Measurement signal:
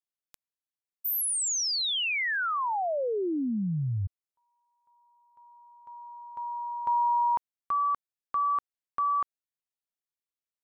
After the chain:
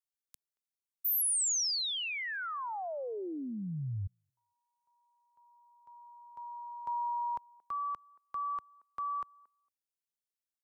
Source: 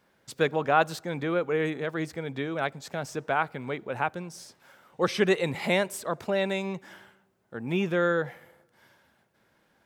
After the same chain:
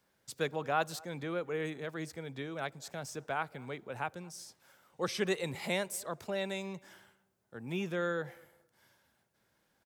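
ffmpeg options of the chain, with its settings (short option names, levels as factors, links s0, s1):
-filter_complex "[0:a]bass=f=250:g=-4,treble=f=4000:g=8,acrossover=split=160|5200[s0][s1][s2];[s0]acontrast=90[s3];[s1]asplit=2[s4][s5];[s5]adelay=228,lowpass=f=1300:p=1,volume=0.0708,asplit=2[s6][s7];[s7]adelay=228,lowpass=f=1300:p=1,volume=0.17[s8];[s4][s6][s8]amix=inputs=3:normalize=0[s9];[s3][s9][s2]amix=inputs=3:normalize=0,volume=0.355"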